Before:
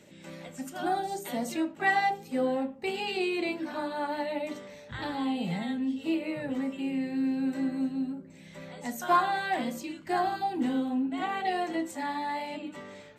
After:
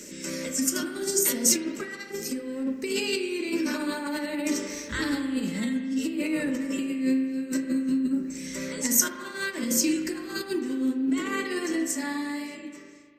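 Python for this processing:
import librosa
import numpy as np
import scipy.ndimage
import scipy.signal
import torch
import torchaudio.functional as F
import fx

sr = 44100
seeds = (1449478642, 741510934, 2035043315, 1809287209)

y = fx.fade_out_tail(x, sr, length_s=2.62)
y = fx.over_compress(y, sr, threshold_db=-36.0, ratio=-1.0)
y = fx.high_shelf_res(y, sr, hz=4500.0, db=6.5, q=3.0)
y = fx.fixed_phaser(y, sr, hz=310.0, stages=4)
y = fx.rev_spring(y, sr, rt60_s=1.9, pass_ms=(38,), chirp_ms=75, drr_db=6.0)
y = y * 10.0 ** (8.5 / 20.0)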